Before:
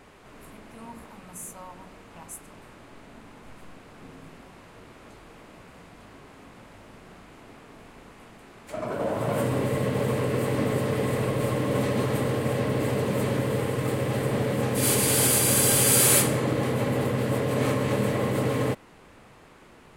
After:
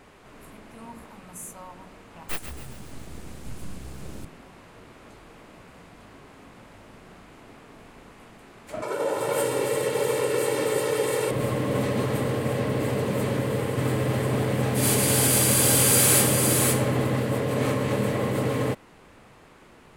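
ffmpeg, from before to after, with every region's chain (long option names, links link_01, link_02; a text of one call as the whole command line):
ffmpeg -i in.wav -filter_complex "[0:a]asettb=1/sr,asplit=3[link_01][link_02][link_03];[link_01]atrim=end=2.294[link_04];[link_02]atrim=start=2.29:end=4.25,asetpts=PTS-STARTPTS,afade=type=in:duration=0.004:curve=qsin,afade=type=out:start_time=1.956:duration=0.004:curve=qsin,bass=frequency=250:gain=13,treble=frequency=4000:gain=13,aeval=exprs='abs(val(0))':channel_layout=same,asplit=7[link_05][link_06][link_07][link_08][link_09][link_10][link_11];[link_06]adelay=137,afreqshift=66,volume=-9.5dB[link_12];[link_07]adelay=274,afreqshift=132,volume=-15.3dB[link_13];[link_08]adelay=411,afreqshift=198,volume=-21.2dB[link_14];[link_09]adelay=548,afreqshift=264,volume=-27dB[link_15];[link_10]adelay=685,afreqshift=330,volume=-32.9dB[link_16];[link_11]adelay=822,afreqshift=396,volume=-38.7dB[link_17];[link_05][link_12][link_13][link_14][link_15][link_16][link_17]amix=inputs=7:normalize=0,atrim=end_sample=86436[link_18];[link_03]atrim=start=4.246[link_19];[link_04][link_18]acrossfade=duration=0.004:curve1=hsin:curve2=qsin[link_20];[link_20][link_19]acrossfade=duration=0.004:curve1=qsin:curve2=hsin,asettb=1/sr,asplit=3[link_21][link_22][link_23];[link_21]atrim=end=8.824[link_24];[link_22]atrim=start=8.82:end=11.31,asetpts=PTS-STARTPTS,afade=type=in:duration=0.004:curve=qsin,afade=type=out:start_time=2.486:duration=0.004:curve=qsin,highpass=240,equalizer=frequency=8400:width=0.5:gain=7.5,aecho=1:1:2.2:0.76,atrim=end_sample=109809[link_25];[link_23]atrim=start=11.306[link_26];[link_24][link_25]acrossfade=duration=0.004:curve1=hsin:curve2=qsin[link_27];[link_27][link_26]acrossfade=duration=0.004:curve1=qsin:curve2=hsin,asettb=1/sr,asplit=3[link_28][link_29][link_30];[link_28]atrim=end=13.264[link_31];[link_29]atrim=start=13.26:end=17.2,asetpts=PTS-STARTPTS,afade=type=in:duration=0.004:curve=qsin,afade=type=out:start_time=3.936:duration=0.004:curve=qsin,asoftclip=type=hard:threshold=-13.5dB,aecho=1:1:514:0.631,atrim=end_sample=173754[link_32];[link_30]atrim=start=17.196[link_33];[link_31][link_32]acrossfade=duration=0.004:curve1=hsin:curve2=qsin[link_34];[link_34][link_33]acrossfade=duration=0.004:curve1=qsin:curve2=hsin" out.wav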